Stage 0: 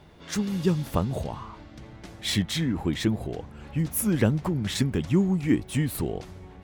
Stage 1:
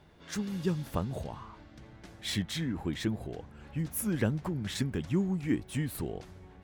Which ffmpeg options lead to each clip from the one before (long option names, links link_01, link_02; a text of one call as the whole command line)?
ffmpeg -i in.wav -af "equalizer=frequency=1600:width_type=o:width=0.31:gain=3.5,volume=-7dB" out.wav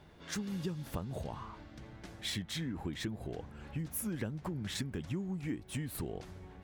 ffmpeg -i in.wav -af "acompressor=threshold=-36dB:ratio=5,volume=1dB" out.wav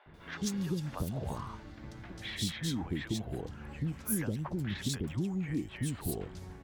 ffmpeg -i in.wav -filter_complex "[0:a]acrossover=split=570|3100[link_01][link_02][link_03];[link_01]adelay=60[link_04];[link_03]adelay=140[link_05];[link_04][link_02][link_05]amix=inputs=3:normalize=0,volume=4dB" out.wav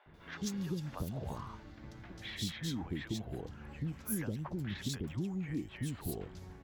ffmpeg -i in.wav -af "equalizer=frequency=8900:width_type=o:width=0.22:gain=-8.5,volume=-3.5dB" out.wav